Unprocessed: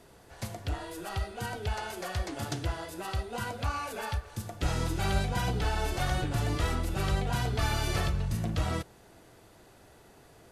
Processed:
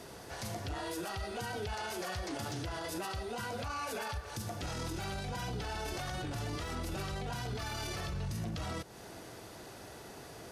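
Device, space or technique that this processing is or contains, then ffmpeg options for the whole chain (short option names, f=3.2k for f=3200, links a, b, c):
broadcast voice chain: -af "highpass=f=86:p=1,bandreject=f=7.5k:w=24,deesser=0.75,acompressor=threshold=-40dB:ratio=4,equalizer=f=5.4k:t=o:w=0.61:g=4.5,alimiter=level_in=14dB:limit=-24dB:level=0:latency=1:release=14,volume=-14dB,volume=7.5dB"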